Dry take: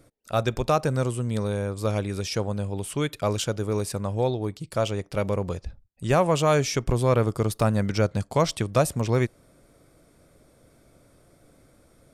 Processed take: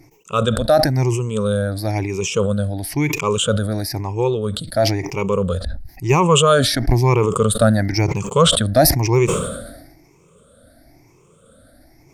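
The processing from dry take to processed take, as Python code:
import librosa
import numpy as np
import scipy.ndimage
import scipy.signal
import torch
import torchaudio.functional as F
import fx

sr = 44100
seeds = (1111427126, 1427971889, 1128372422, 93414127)

y = fx.spec_ripple(x, sr, per_octave=0.74, drift_hz=1.0, depth_db=21)
y = fx.sustainer(y, sr, db_per_s=49.0)
y = y * 10.0 ** (1.5 / 20.0)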